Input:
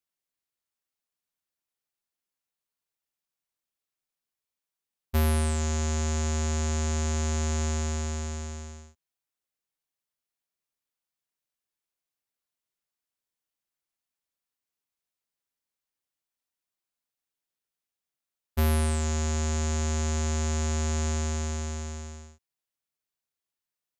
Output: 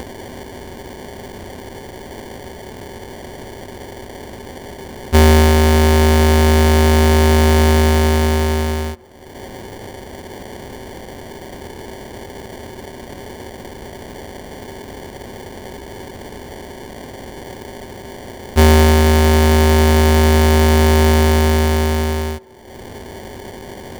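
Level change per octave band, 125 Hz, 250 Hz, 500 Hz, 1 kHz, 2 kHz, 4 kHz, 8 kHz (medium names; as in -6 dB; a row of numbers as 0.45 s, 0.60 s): +14.5 dB, +18.0 dB, +21.5 dB, +20.0 dB, +19.0 dB, +17.5 dB, +7.5 dB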